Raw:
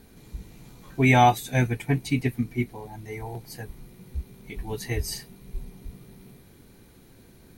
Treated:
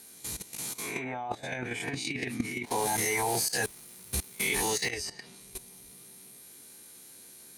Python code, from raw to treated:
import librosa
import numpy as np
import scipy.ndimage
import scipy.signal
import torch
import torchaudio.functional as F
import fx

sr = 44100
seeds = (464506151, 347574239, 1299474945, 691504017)

y = fx.spec_swells(x, sr, rise_s=0.42)
y = scipy.signal.sosfilt(scipy.signal.butter(4, 11000.0, 'lowpass', fs=sr, output='sos'), y)
y = fx.riaa(y, sr, side='recording')
y = fx.env_lowpass_down(y, sr, base_hz=1100.0, full_db=-18.5)
y = fx.highpass(y, sr, hz=100.0, slope=6)
y = fx.high_shelf(y, sr, hz=7300.0, db=8.0)
y = fx.level_steps(y, sr, step_db=15)
y = fx.leveller(y, sr, passes=2, at=(2.66, 4.91))
y = fx.over_compress(y, sr, threshold_db=-35.0, ratio=-0.5)
y = y * 10.0 ** (6.0 / 20.0)